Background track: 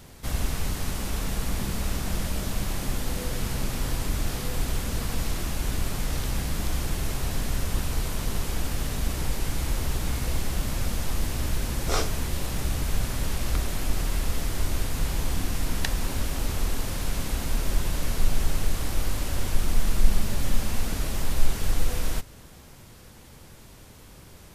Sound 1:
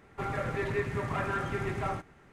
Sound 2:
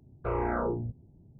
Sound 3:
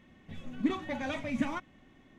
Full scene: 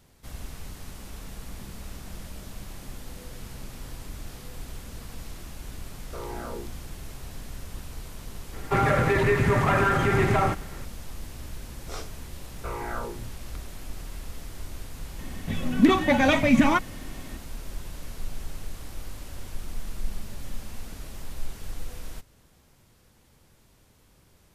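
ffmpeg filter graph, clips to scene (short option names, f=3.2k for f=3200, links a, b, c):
-filter_complex "[2:a]asplit=2[a][b];[0:a]volume=-11.5dB[c];[a]highpass=150[d];[1:a]alimiter=level_in=25dB:limit=-1dB:release=50:level=0:latency=1[e];[b]tiltshelf=f=970:g=-7[f];[3:a]alimiter=level_in=22dB:limit=-1dB:release=50:level=0:latency=1[g];[d]atrim=end=1.39,asetpts=PTS-STARTPTS,volume=-7dB,afade=t=in:d=0.004:c=hsin,afade=t=out:st=1.386:d=0.004:c=hsin,adelay=5880[h];[e]atrim=end=2.32,asetpts=PTS-STARTPTS,volume=-12dB,afade=t=in:d=0.004:c=hsin,afade=t=out:st=2.316:d=0.004:c=hsin,adelay=8530[i];[f]atrim=end=1.39,asetpts=PTS-STARTPTS,volume=-2dB,afade=t=in:d=0.004:c=hsin,afade=t=out:st=1.386:d=0.004:c=hsin,adelay=12390[j];[g]atrim=end=2.18,asetpts=PTS-STARTPTS,volume=-7dB,afade=t=in:d=0.004:c=hsin,afade=t=out:st=2.176:d=0.004:c=hsin,adelay=15190[k];[c][h][i][j][k]amix=inputs=5:normalize=0"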